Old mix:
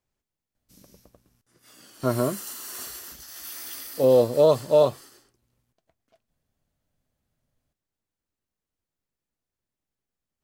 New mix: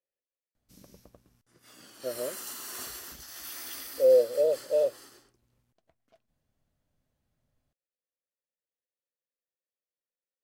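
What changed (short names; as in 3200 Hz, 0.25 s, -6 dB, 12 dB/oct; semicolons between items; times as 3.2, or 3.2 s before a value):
speech: add vowel filter e; master: add high shelf 5300 Hz -4 dB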